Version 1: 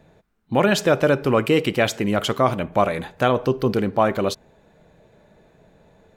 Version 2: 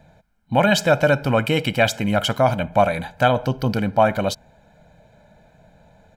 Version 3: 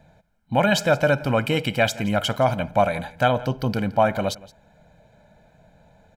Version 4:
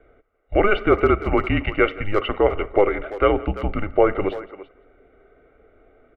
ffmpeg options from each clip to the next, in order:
ffmpeg -i in.wav -af "aecho=1:1:1.3:0.72" out.wav
ffmpeg -i in.wav -af "aecho=1:1:170:0.0944,volume=-2.5dB" out.wav
ffmpeg -i in.wav -filter_complex "[0:a]highpass=frequency=160:width_type=q:width=0.5412,highpass=frequency=160:width_type=q:width=1.307,lowpass=frequency=2800:width_type=q:width=0.5176,lowpass=frequency=2800:width_type=q:width=0.7071,lowpass=frequency=2800:width_type=q:width=1.932,afreqshift=-200,asplit=2[link_01][link_02];[link_02]adelay=340,highpass=300,lowpass=3400,asoftclip=type=hard:threshold=-13.5dB,volume=-14dB[link_03];[link_01][link_03]amix=inputs=2:normalize=0,volume=2.5dB" out.wav

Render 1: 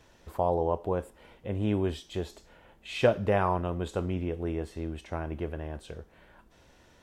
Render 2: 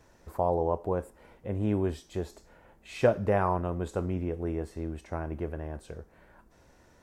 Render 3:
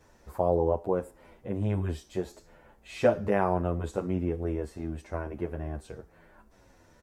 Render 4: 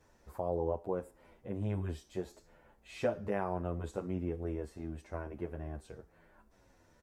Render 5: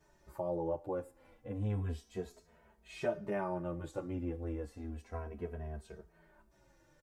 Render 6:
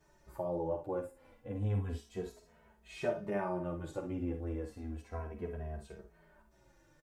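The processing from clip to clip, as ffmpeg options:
ffmpeg -i in.wav -af "equalizer=frequency=3200:width_type=o:width=0.8:gain=-9.5" out.wav
ffmpeg -i in.wav -filter_complex "[0:a]asplit=2[link_01][link_02];[link_02]adelay=9.5,afreqshift=-1.6[link_03];[link_01][link_03]amix=inputs=2:normalize=1,volume=3.5dB" out.wav
ffmpeg -i in.wav -af "alimiter=limit=-15.5dB:level=0:latency=1:release=374,volume=-6.5dB" out.wav
ffmpeg -i in.wav -filter_complex "[0:a]asplit=2[link_01][link_02];[link_02]adelay=2.8,afreqshift=-0.32[link_03];[link_01][link_03]amix=inputs=2:normalize=1,volume=1.5dB" out.wav
ffmpeg -i in.wav -af "aecho=1:1:50|69:0.376|0.237" out.wav

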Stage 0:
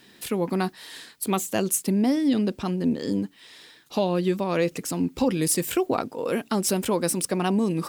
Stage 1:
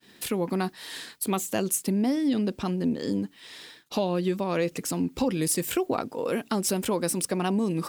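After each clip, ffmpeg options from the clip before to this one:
ffmpeg -i in.wav -af "acompressor=threshold=-37dB:ratio=1.5,agate=range=-33dB:threshold=-48dB:ratio=3:detection=peak,volume=3.5dB" out.wav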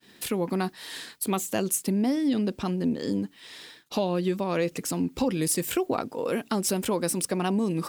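ffmpeg -i in.wav -af anull out.wav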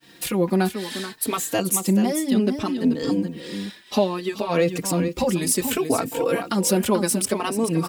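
ffmpeg -i in.wav -filter_complex "[0:a]aecho=1:1:434:0.355,asplit=2[link_01][link_02];[link_02]adelay=3.9,afreqshift=0.64[link_03];[link_01][link_03]amix=inputs=2:normalize=1,volume=8dB" out.wav

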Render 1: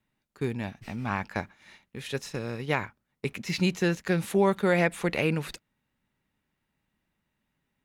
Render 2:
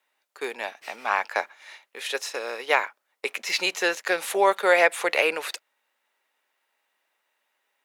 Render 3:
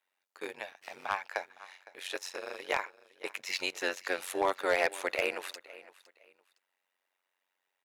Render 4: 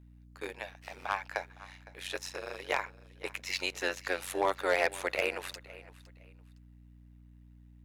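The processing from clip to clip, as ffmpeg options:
ffmpeg -i in.wav -af "highpass=frequency=500:width=0.5412,highpass=frequency=500:width=1.3066,volume=8dB" out.wav
ffmpeg -i in.wav -af "aecho=1:1:511|1022:0.106|0.0286,tremolo=f=92:d=0.919,asoftclip=type=hard:threshold=-14dB,volume=-5dB" out.wav
ffmpeg -i in.wav -af "aeval=exprs='val(0)+0.002*(sin(2*PI*60*n/s)+sin(2*PI*2*60*n/s)/2+sin(2*PI*3*60*n/s)/3+sin(2*PI*4*60*n/s)/4+sin(2*PI*5*60*n/s)/5)':channel_layout=same" out.wav

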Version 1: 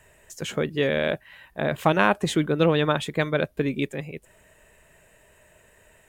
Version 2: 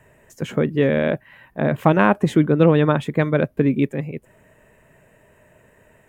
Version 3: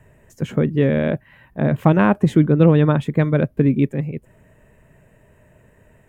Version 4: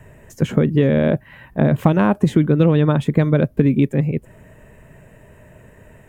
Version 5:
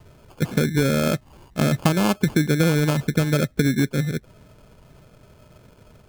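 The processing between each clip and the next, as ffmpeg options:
ffmpeg -i in.wav -af "equalizer=frequency=125:width_type=o:width=1:gain=9,equalizer=frequency=250:width_type=o:width=1:gain=9,equalizer=frequency=500:width_type=o:width=1:gain=4,equalizer=frequency=1000:width_type=o:width=1:gain=4,equalizer=frequency=2000:width_type=o:width=1:gain=3,equalizer=frequency=4000:width_type=o:width=1:gain=-5,equalizer=frequency=8000:width_type=o:width=1:gain=-4,volume=-2dB" out.wav
ffmpeg -i in.wav -af "lowshelf=frequency=230:gain=10.5,volume=-3dB" out.wav
ffmpeg -i in.wav -filter_complex "[0:a]acrossover=split=1600|3200[link_01][link_02][link_03];[link_01]acompressor=threshold=-19dB:ratio=4[link_04];[link_02]acompressor=threshold=-47dB:ratio=4[link_05];[link_03]acompressor=threshold=-45dB:ratio=4[link_06];[link_04][link_05][link_06]amix=inputs=3:normalize=0,volume=7dB" out.wav
ffmpeg -i in.wav -af "acrusher=samples=23:mix=1:aa=0.000001,volume=-4.5dB" out.wav

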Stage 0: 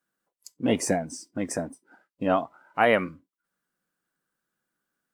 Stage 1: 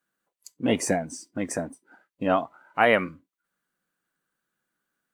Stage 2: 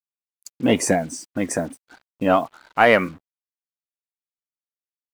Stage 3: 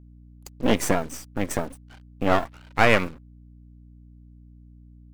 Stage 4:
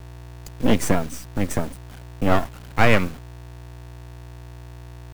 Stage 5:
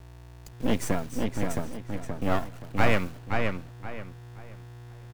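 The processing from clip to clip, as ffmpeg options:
ffmpeg -i in.wav -af "equalizer=frequency=2200:width=0.65:gain=2.5,bandreject=frequency=5200:width=14" out.wav
ffmpeg -i in.wav -filter_complex "[0:a]asplit=2[link_01][link_02];[link_02]volume=14.5dB,asoftclip=hard,volume=-14.5dB,volume=-7.5dB[link_03];[link_01][link_03]amix=inputs=2:normalize=0,acrusher=bits=7:mix=0:aa=0.5,volume=2.5dB" out.wav
ffmpeg -i in.wav -af "aeval=exprs='max(val(0),0)':channel_layout=same,aeval=exprs='val(0)+0.00447*(sin(2*PI*60*n/s)+sin(2*PI*2*60*n/s)/2+sin(2*PI*3*60*n/s)/3+sin(2*PI*4*60*n/s)/4+sin(2*PI*5*60*n/s)/5)':channel_layout=same" out.wav
ffmpeg -i in.wav -filter_complex "[0:a]acrossover=split=220|4200[link_01][link_02][link_03];[link_01]acontrast=77[link_04];[link_04][link_02][link_03]amix=inputs=3:normalize=0,acrusher=bits=6:mix=0:aa=0.000001" out.wav
ffmpeg -i in.wav -filter_complex "[0:a]asplit=2[link_01][link_02];[link_02]adelay=525,lowpass=frequency=3500:poles=1,volume=-3.5dB,asplit=2[link_03][link_04];[link_04]adelay=525,lowpass=frequency=3500:poles=1,volume=0.3,asplit=2[link_05][link_06];[link_06]adelay=525,lowpass=frequency=3500:poles=1,volume=0.3,asplit=2[link_07][link_08];[link_08]adelay=525,lowpass=frequency=3500:poles=1,volume=0.3[link_09];[link_01][link_03][link_05][link_07][link_09]amix=inputs=5:normalize=0,volume=-7.5dB" out.wav

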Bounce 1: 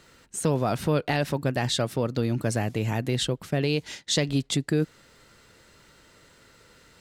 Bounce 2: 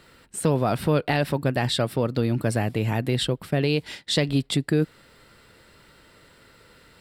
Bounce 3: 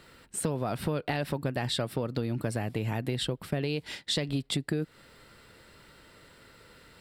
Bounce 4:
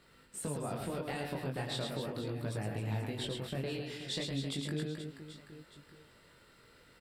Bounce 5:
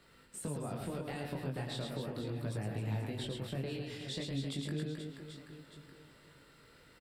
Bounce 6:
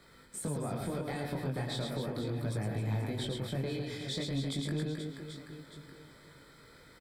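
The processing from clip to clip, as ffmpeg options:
ffmpeg -i in.wav -af "equalizer=frequency=6400:width=4:gain=-14,volume=2.5dB" out.wav
ffmpeg -i in.wav -af "acompressor=threshold=-25dB:ratio=6,volume=-1.5dB" out.wav
ffmpeg -i in.wav -filter_complex "[0:a]asplit=2[link_01][link_02];[link_02]aecho=0:1:110|264|479.6|781.4|1204:0.631|0.398|0.251|0.158|0.1[link_03];[link_01][link_03]amix=inputs=2:normalize=0,flanger=delay=19:depth=4.3:speed=0.38,volume=-5.5dB" out.wav
ffmpeg -i in.wav -filter_complex "[0:a]acrossover=split=330[link_01][link_02];[link_02]acompressor=threshold=-48dB:ratio=1.5[link_03];[link_01][link_03]amix=inputs=2:normalize=0,asplit=2[link_04][link_05];[link_05]adelay=510,lowpass=frequency=3900:poles=1,volume=-16dB,asplit=2[link_06][link_07];[link_07]adelay=510,lowpass=frequency=3900:poles=1,volume=0.46,asplit=2[link_08][link_09];[link_09]adelay=510,lowpass=frequency=3900:poles=1,volume=0.46,asplit=2[link_10][link_11];[link_11]adelay=510,lowpass=frequency=3900:poles=1,volume=0.46[link_12];[link_04][link_06][link_08][link_10][link_12]amix=inputs=5:normalize=0" out.wav
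ffmpeg -i in.wav -filter_complex "[0:a]asplit=2[link_01][link_02];[link_02]asoftclip=type=hard:threshold=-36dB,volume=-4dB[link_03];[link_01][link_03]amix=inputs=2:normalize=0,asuperstop=centerf=2800:order=12:qfactor=7.5" out.wav

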